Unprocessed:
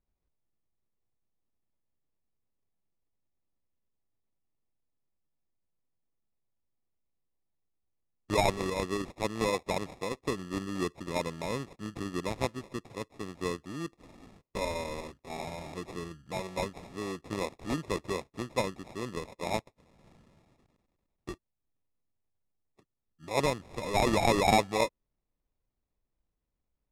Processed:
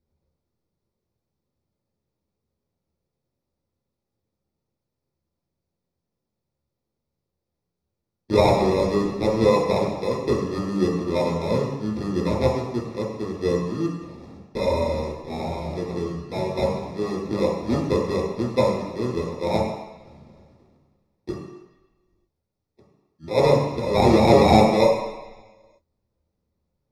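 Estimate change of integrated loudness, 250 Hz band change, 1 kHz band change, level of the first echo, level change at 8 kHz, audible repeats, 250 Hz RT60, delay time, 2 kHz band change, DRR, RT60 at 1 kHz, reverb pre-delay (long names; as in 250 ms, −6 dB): +11.0 dB, +12.0 dB, +8.0 dB, no echo audible, 0.0 dB, no echo audible, 1.0 s, no echo audible, +3.0 dB, −5.5 dB, 1.2 s, 8 ms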